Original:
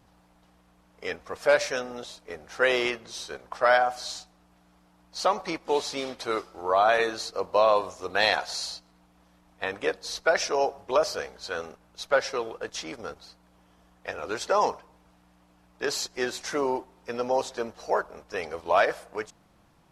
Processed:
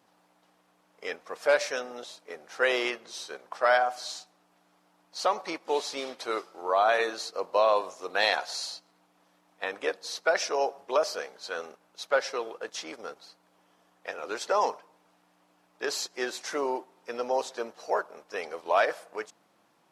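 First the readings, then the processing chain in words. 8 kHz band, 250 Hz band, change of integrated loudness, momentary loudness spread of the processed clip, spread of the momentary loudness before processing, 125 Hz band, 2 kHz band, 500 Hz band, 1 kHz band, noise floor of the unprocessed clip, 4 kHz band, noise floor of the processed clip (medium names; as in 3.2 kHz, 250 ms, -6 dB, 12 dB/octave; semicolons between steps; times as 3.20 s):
-2.0 dB, -4.5 dB, -2.0 dB, 15 LU, 15 LU, under -10 dB, -2.0 dB, -2.5 dB, -2.0 dB, -62 dBFS, -2.0 dB, -67 dBFS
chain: high-pass 290 Hz 12 dB/octave; trim -2 dB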